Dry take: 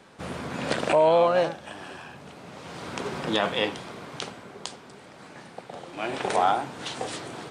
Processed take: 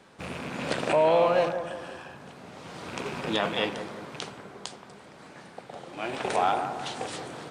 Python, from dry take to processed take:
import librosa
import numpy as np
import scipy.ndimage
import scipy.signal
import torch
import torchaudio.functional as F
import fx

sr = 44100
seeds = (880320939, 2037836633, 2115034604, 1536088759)

y = fx.rattle_buzz(x, sr, strikes_db=-38.0, level_db=-27.0)
y = fx.echo_bbd(y, sr, ms=175, stages=2048, feedback_pct=46, wet_db=-8.5)
y = y * 10.0 ** (-2.5 / 20.0)